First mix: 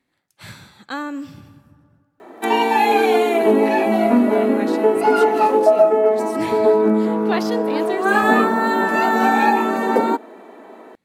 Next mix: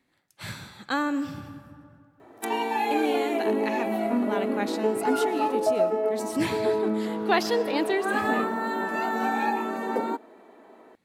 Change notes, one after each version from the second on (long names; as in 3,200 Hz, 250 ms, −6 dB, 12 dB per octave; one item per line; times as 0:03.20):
speech: send +7.5 dB
background −10.5 dB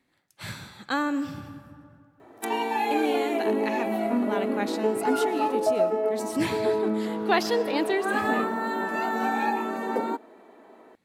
nothing changed